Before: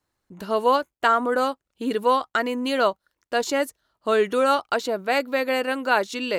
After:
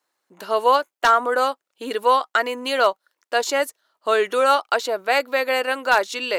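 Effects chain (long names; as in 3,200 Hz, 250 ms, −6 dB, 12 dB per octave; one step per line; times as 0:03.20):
high-pass filter 480 Hz 12 dB per octave
wave folding −10 dBFS
level +4 dB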